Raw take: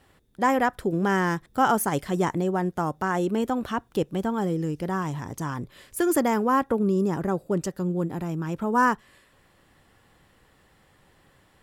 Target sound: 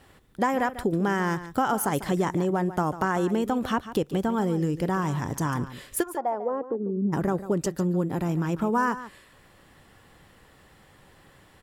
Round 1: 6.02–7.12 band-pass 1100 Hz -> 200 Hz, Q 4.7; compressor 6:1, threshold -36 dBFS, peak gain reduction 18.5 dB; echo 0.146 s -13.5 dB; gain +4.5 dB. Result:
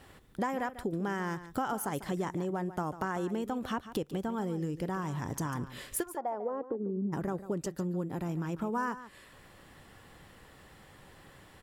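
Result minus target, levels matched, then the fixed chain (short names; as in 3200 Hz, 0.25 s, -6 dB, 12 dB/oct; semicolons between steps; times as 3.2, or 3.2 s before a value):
compressor: peak gain reduction +9 dB
6.02–7.12 band-pass 1100 Hz -> 200 Hz, Q 4.7; compressor 6:1, threshold -25.5 dBFS, peak gain reduction 10 dB; echo 0.146 s -13.5 dB; gain +4.5 dB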